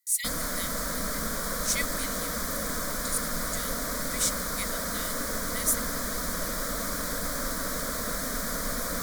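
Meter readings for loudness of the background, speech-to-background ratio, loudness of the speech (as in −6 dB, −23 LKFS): −30.5 LKFS, −2.5 dB, −33.0 LKFS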